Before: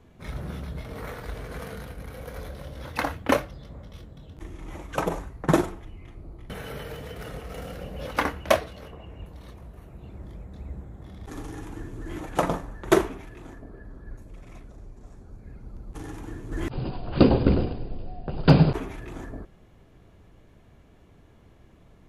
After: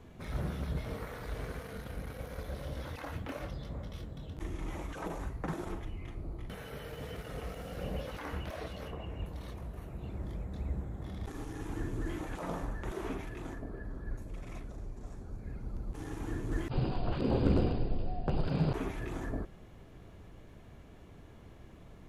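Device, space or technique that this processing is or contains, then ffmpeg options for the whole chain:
de-esser from a sidechain: -filter_complex "[0:a]asplit=2[a][b];[b]highpass=5.8k,apad=whole_len=974026[c];[a][c]sidechaincompress=threshold=-59dB:ratio=20:attack=0.91:release=20,volume=1.5dB"

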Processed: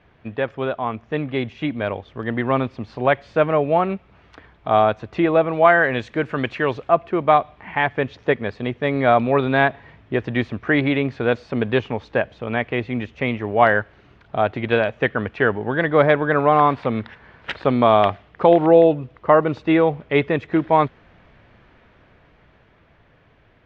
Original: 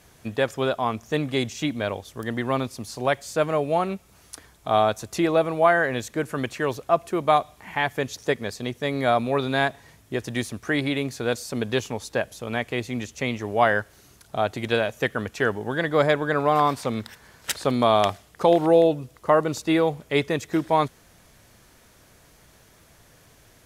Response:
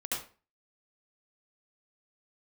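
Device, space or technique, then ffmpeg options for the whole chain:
action camera in a waterproof case: -filter_complex "[0:a]asettb=1/sr,asplit=3[a][b][c];[a]atrim=end=5.534[d];[b]atrim=start=5.53:end=6.89,asetpts=PTS-STARTPTS,afade=t=in:d=0.004:c=qsin,afade=t=out:st=1.356:d=0.004:c=qsin,aemphasis=mode=production:type=75kf[e];[c]atrim=start=6.886[f];[d][e]acrossfade=d=0.004:c1=hsin:c2=qsin[g];[g][f]acrossfade=d=0.004:c1=qsin:c2=hsin,lowpass=f=2.9k:w=0.5412,lowpass=f=2.9k:w=1.3066,dynaudnorm=f=240:g=17:m=9dB" -ar 32000 -c:a aac -b:a 96k

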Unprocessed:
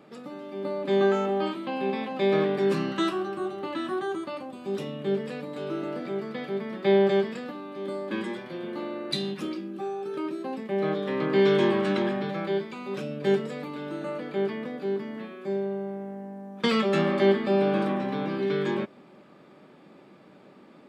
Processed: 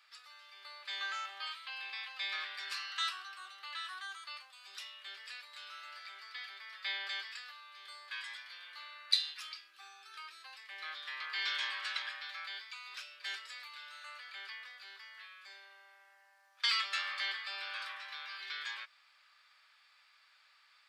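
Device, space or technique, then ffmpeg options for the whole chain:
headphones lying on a table: -af "highpass=f=1.4k:w=0.5412,highpass=f=1.4k:w=1.3066,equalizer=f=4.7k:t=o:w=0.57:g=9,volume=-3dB"

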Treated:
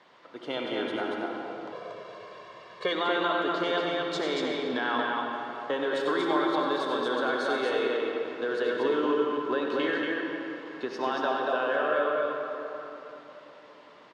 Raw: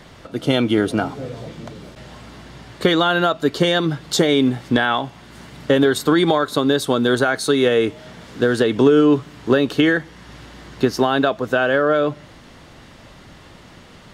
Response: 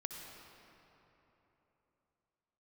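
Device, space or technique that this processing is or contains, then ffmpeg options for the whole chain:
station announcement: -filter_complex "[0:a]highpass=390,lowpass=4.1k,equalizer=f=1k:t=o:w=0.27:g=7.5,aecho=1:1:96.21|233.2:0.355|0.708[a];[1:a]atrim=start_sample=2205[b];[a][b]afir=irnorm=-1:irlink=0,asettb=1/sr,asplit=3[c][d][e];[c]atrim=end=1.724[f];[d]atrim=start=1.72:end=2.93,asetpts=PTS-STARTPTS,afade=t=in:d=0.004:c=qsin,afade=t=out:st=1.206:d=0.004:c=qsin,aecho=1:1:1.8:0.92,atrim=end_sample=53361[g];[e]atrim=start=2.926[h];[f][g]acrossfade=d=0.004:c1=hsin:c2=qsin[i];[i][h]acrossfade=d=0.004:c1=qsin:c2=hsin,volume=-9dB"

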